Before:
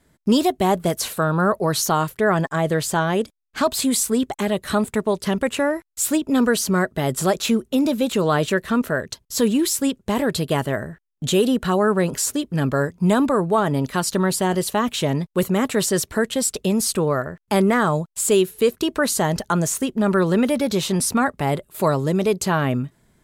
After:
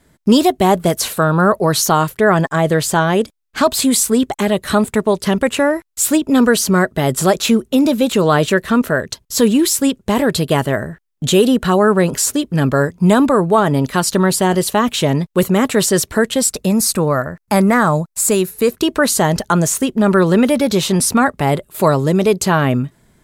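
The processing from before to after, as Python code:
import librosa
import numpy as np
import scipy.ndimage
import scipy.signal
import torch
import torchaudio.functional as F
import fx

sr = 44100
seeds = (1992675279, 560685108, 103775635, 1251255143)

y = fx.graphic_eq_31(x, sr, hz=(400, 3150, 12500), db=(-7, -10, 3), at=(16.49, 18.71))
y = F.gain(torch.from_numpy(y), 6.0).numpy()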